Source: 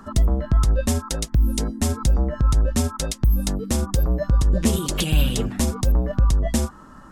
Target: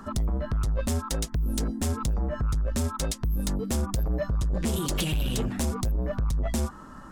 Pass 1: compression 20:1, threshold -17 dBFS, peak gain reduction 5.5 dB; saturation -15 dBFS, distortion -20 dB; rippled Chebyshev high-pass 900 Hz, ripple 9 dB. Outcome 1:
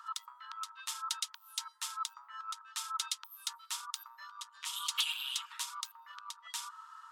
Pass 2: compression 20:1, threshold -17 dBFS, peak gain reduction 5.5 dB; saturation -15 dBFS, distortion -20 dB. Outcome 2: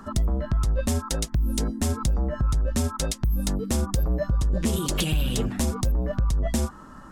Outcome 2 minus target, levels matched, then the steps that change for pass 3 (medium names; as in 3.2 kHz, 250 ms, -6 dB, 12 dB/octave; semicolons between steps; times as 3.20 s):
saturation: distortion -8 dB
change: saturation -22 dBFS, distortion -12 dB